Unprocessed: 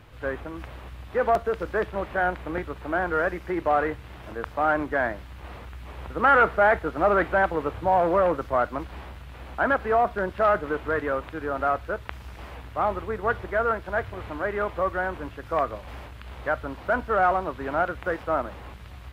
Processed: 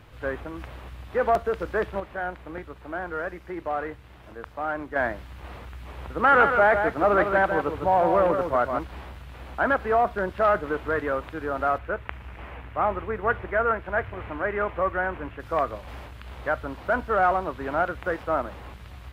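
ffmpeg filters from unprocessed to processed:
ffmpeg -i in.wav -filter_complex "[0:a]asettb=1/sr,asplit=3[link_01][link_02][link_03];[link_01]atrim=end=6.104[link_04];[link_02]atrim=start=6.1:end=8.79,asetpts=PTS-STARTPTS,afade=type=in:duration=0.004:curve=qsin,afade=type=out:start_time=2.686:duration=0.004:curve=qsin,aecho=1:1:155:0.473,atrim=end_sample=118629[link_05];[link_03]atrim=start=8.786[link_06];[link_04][link_05]acrossfade=duration=0.004:curve1=hsin:curve2=qsin[link_07];[link_07][link_06]acrossfade=duration=0.004:curve1=qsin:curve2=hsin,asettb=1/sr,asplit=3[link_08][link_09][link_10];[link_08]atrim=end=11.784[link_11];[link_09]atrim=start=11.78:end=15.4,asetpts=PTS-STARTPTS,afade=type=in:duration=0.004:curve=qsin,afade=type=out:start_time=3.616:duration=0.004:curve=qsin,highshelf=frequency=3400:width_type=q:width=1.5:gain=-10[link_12];[link_10]atrim=start=15.396[link_13];[link_11][link_12]acrossfade=duration=0.004:curve1=hsin:curve2=qsin[link_14];[link_14][link_13]acrossfade=duration=0.004:curve1=qsin:curve2=hsin,asplit=3[link_15][link_16][link_17];[link_15]atrim=end=2.002[link_18];[link_16]atrim=start=1.998:end=4.962,asetpts=PTS-STARTPTS,volume=-6.5dB[link_19];[link_17]atrim=start=4.958[link_20];[link_18][link_19]acrossfade=duration=0.004:curve1=hsin:curve2=hsin[link_21];[link_21][link_20]acrossfade=duration=0.004:curve1=hsin:curve2=hsin" out.wav

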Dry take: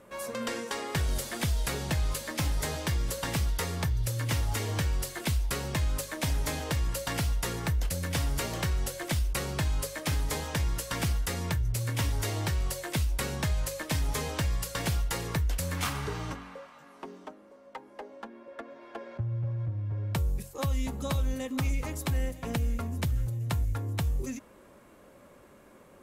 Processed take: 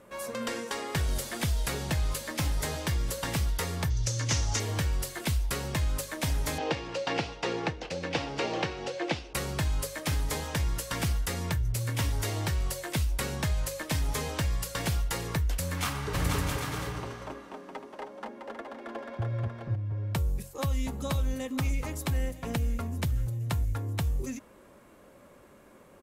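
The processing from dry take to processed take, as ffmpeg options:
ffmpeg -i in.wav -filter_complex "[0:a]asettb=1/sr,asplit=3[link_01][link_02][link_03];[link_01]atrim=end=3.904[link_04];[link_02]atrim=start=3.9:end=4.6,asetpts=PTS-STARTPTS,afade=type=in:duration=0.004:curve=qsin,afade=type=out:start_time=0.696:duration=0.004:curve=qsin,lowpass=frequency=6200:width_type=q:width=4.1[link_05];[link_03]atrim=start=4.596[link_06];[link_04][link_05]acrossfade=duration=0.004:curve1=hsin:curve2=qsin[link_07];[link_07][link_06]acrossfade=duration=0.004:curve1=qsin:curve2=hsin,asettb=1/sr,asplit=3[link_08][link_09][link_10];[link_08]atrim=end=6.584[link_11];[link_09]atrim=start=6.58:end=9.35,asetpts=PTS-STARTPTS,afade=type=in:duration=0.004:curve=qsin,afade=type=out:start_time=2.766:duration=0.004:curve=qsin,highpass=170,equalizer=frequency=330:width_type=q:width=4:gain=7,equalizer=frequency=480:width_type=q:width=4:gain=8,equalizer=frequency=790:width_type=q:width=4:gain=8,equalizer=frequency=2600:width_type=q:width=4:gain=6,lowpass=frequency=5500:width=0.5412,lowpass=frequency=5500:width=1.3066[link_12];[link_10]atrim=start=9.346[link_13];[link_11][link_12]acrossfade=duration=0.004:curve1=hsin:curve2=qsin[link_14];[link_14][link_13]acrossfade=duration=0.004:curve1=qsin:curve2=hsin,asplit=3[link_15][link_16][link_17];[link_15]afade=type=out:start_time=16.13:duration=0.02[link_18];[link_16]aecho=1:1:270|486|658.8|797|907.6|996.1:0.794|0.631|0.501|0.398|0.316|0.251,afade=type=in:start_time=16.13:duration=0.02,afade=type=out:start_time=19.74:duration=0.02[link_19];[link_17]afade=type=in:start_time=19.74:duration=0.02[link_20];[link_18][link_19][link_20]amix=inputs=3:normalize=0" out.wav

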